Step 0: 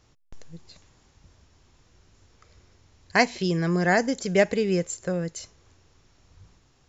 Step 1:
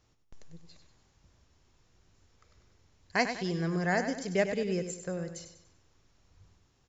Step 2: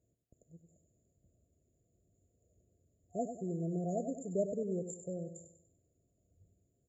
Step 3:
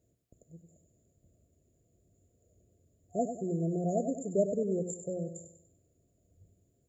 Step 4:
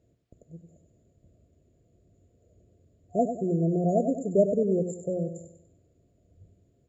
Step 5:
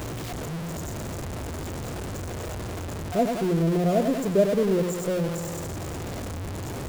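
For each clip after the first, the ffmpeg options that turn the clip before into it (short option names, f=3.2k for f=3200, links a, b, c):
-af "aecho=1:1:97|194|291|388|485:0.355|0.145|0.0596|0.0245|0.01,volume=-8dB"
-af "afftfilt=real='re*(1-between(b*sr/4096,720,6700))':imag='im*(1-between(b*sr/4096,720,6700))':win_size=4096:overlap=0.75,highpass=70,volume=-5dB"
-af "bandreject=f=60:t=h:w=6,bandreject=f=120:t=h:w=6,bandreject=f=180:t=h:w=6,volume=5.5dB"
-af "lowpass=4.3k,volume=6.5dB"
-af "aeval=exprs='val(0)+0.5*0.0447*sgn(val(0))':c=same"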